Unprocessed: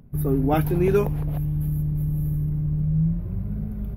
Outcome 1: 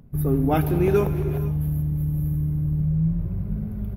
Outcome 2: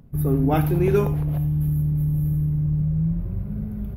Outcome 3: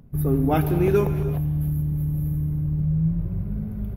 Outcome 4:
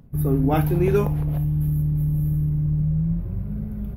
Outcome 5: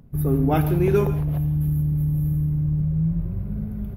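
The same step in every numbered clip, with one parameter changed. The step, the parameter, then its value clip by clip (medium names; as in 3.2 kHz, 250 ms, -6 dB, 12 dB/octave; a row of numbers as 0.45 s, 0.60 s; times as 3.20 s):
gated-style reverb, gate: 520 ms, 120 ms, 350 ms, 80 ms, 190 ms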